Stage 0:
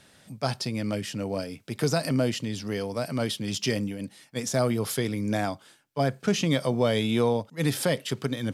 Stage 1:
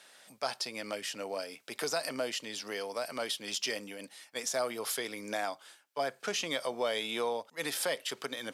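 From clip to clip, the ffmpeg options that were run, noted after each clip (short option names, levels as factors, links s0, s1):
-filter_complex "[0:a]highpass=590,asplit=2[s0][s1];[s1]acompressor=threshold=0.0158:ratio=6,volume=1.33[s2];[s0][s2]amix=inputs=2:normalize=0,volume=0.473"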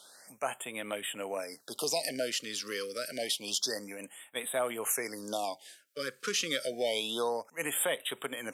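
-af "highshelf=f=5100:g=5.5,afftfilt=real='re*(1-between(b*sr/1024,730*pow(5600/730,0.5+0.5*sin(2*PI*0.28*pts/sr))/1.41,730*pow(5600/730,0.5+0.5*sin(2*PI*0.28*pts/sr))*1.41))':imag='im*(1-between(b*sr/1024,730*pow(5600/730,0.5+0.5*sin(2*PI*0.28*pts/sr))/1.41,730*pow(5600/730,0.5+0.5*sin(2*PI*0.28*pts/sr))*1.41))':win_size=1024:overlap=0.75,volume=1.12"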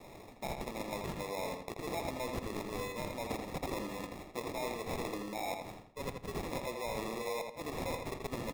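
-filter_complex "[0:a]areverse,acompressor=threshold=0.01:ratio=6,areverse,acrusher=samples=29:mix=1:aa=0.000001,asplit=2[s0][s1];[s1]adelay=82,lowpass=f=4800:p=1,volume=0.562,asplit=2[s2][s3];[s3]adelay=82,lowpass=f=4800:p=1,volume=0.34,asplit=2[s4][s5];[s5]adelay=82,lowpass=f=4800:p=1,volume=0.34,asplit=2[s6][s7];[s7]adelay=82,lowpass=f=4800:p=1,volume=0.34[s8];[s0][s2][s4][s6][s8]amix=inputs=5:normalize=0,volume=1.5"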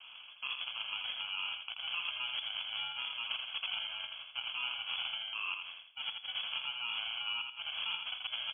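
-af "lowpass=f=2900:t=q:w=0.5098,lowpass=f=2900:t=q:w=0.6013,lowpass=f=2900:t=q:w=0.9,lowpass=f=2900:t=q:w=2.563,afreqshift=-3400"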